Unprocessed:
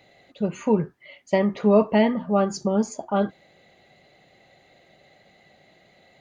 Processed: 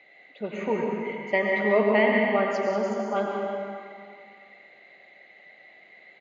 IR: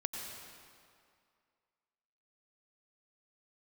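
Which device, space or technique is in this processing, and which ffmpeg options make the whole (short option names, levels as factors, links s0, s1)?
station announcement: -filter_complex "[0:a]highpass=310,lowpass=3700,equalizer=f=2100:t=o:w=0.54:g=12,aecho=1:1:139.9|189.5:0.282|0.355[s0];[1:a]atrim=start_sample=2205[s1];[s0][s1]afir=irnorm=-1:irlink=0,volume=0.708"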